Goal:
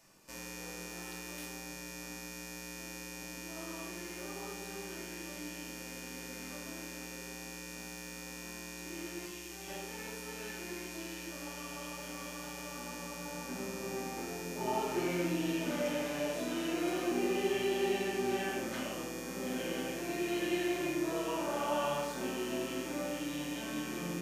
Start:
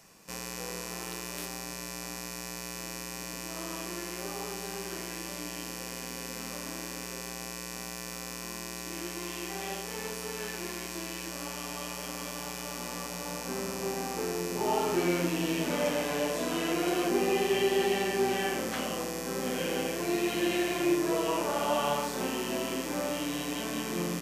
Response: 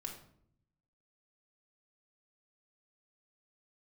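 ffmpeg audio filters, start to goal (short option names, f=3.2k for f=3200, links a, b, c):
-filter_complex "[0:a]asettb=1/sr,asplit=3[a][b][c];[a]atrim=end=9.254[d];[b]atrim=start=9.25:end=9.68,asetpts=PTS-STARTPTS,afade=t=in:d=0.004:c=qsin,afade=t=out:st=0.426:d=0.004:c=qsin,acrossover=split=120|3000[e][f][g];[f]acompressor=threshold=-42dB:ratio=6[h];[e][h][g]amix=inputs=3:normalize=0[i];[c]atrim=start=9.676[j];[d][i]acrossfade=d=0.004:c1=hsin:c2=qsin[k];[k][j]acrossfade=d=0.004:c1=qsin:c2=hsin[l];[1:a]atrim=start_sample=2205,afade=t=out:st=0.16:d=0.01,atrim=end_sample=7497[m];[l][m]afir=irnorm=-1:irlink=0,volume=-3.5dB"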